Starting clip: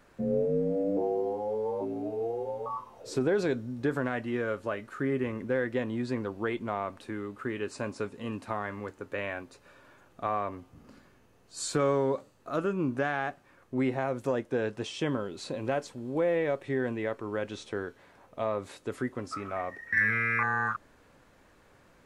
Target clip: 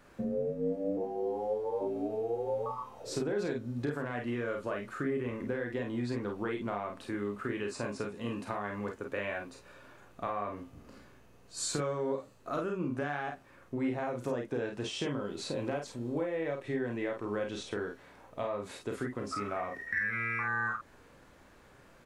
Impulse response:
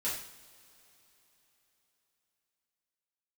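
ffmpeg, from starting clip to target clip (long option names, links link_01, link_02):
-filter_complex "[0:a]acompressor=threshold=-32dB:ratio=6,asplit=2[link_01][link_02];[link_02]aecho=0:1:34|49:0.473|0.531[link_03];[link_01][link_03]amix=inputs=2:normalize=0"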